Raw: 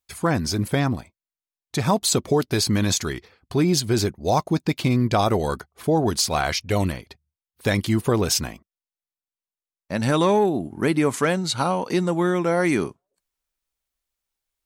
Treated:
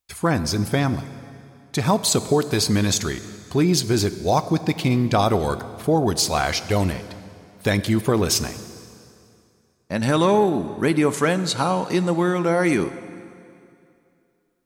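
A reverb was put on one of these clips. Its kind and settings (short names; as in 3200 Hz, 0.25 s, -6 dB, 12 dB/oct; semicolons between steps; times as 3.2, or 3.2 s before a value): plate-style reverb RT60 2.6 s, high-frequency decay 0.85×, DRR 12.5 dB; gain +1 dB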